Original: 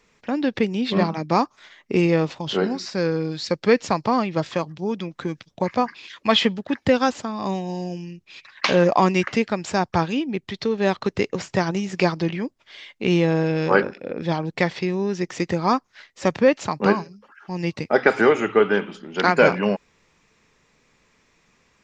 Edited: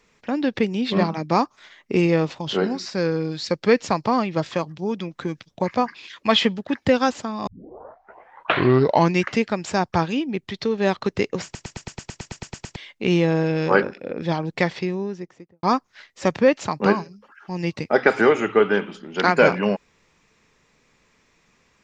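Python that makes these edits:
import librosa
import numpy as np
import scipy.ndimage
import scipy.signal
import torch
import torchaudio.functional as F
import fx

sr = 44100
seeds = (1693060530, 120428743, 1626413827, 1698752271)

y = fx.studio_fade_out(x, sr, start_s=14.65, length_s=0.98)
y = fx.edit(y, sr, fx.tape_start(start_s=7.47, length_s=1.74),
    fx.stutter_over(start_s=11.44, slice_s=0.11, count=12), tone=tone)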